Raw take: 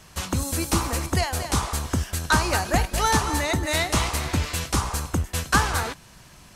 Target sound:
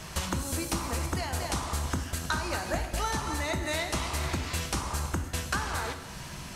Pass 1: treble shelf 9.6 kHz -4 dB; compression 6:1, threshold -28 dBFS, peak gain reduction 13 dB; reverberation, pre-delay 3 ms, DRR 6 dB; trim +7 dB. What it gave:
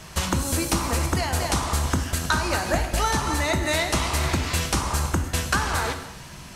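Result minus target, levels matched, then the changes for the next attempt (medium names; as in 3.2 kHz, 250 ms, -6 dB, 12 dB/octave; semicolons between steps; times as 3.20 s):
compression: peak gain reduction -7.5 dB
change: compression 6:1, threshold -37 dBFS, peak gain reduction 20.5 dB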